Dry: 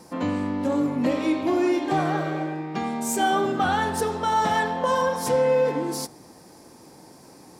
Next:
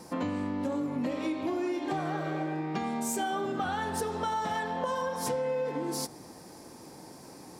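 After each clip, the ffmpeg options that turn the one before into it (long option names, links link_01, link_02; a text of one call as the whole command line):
ffmpeg -i in.wav -af "acompressor=threshold=-29dB:ratio=6" out.wav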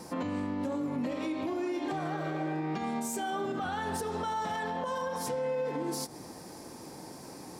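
ffmpeg -i in.wav -af "alimiter=level_in=4dB:limit=-24dB:level=0:latency=1:release=113,volume=-4dB,volume=2.5dB" out.wav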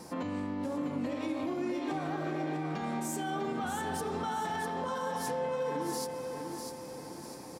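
ffmpeg -i in.wav -af "aecho=1:1:650|1300|1950|2600|3250:0.501|0.216|0.0927|0.0398|0.0171,volume=-2dB" out.wav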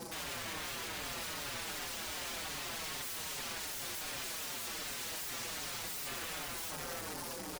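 ffmpeg -i in.wav -filter_complex "[0:a]aeval=exprs='(mod(94.4*val(0)+1,2)-1)/94.4':channel_layout=same,asplit=2[link_01][link_02];[link_02]adelay=5.4,afreqshift=-2.6[link_03];[link_01][link_03]amix=inputs=2:normalize=1,volume=6dB" out.wav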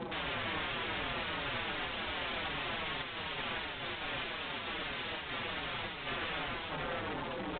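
ffmpeg -i in.wav -af "aresample=8000,aresample=44100,volume=6dB" out.wav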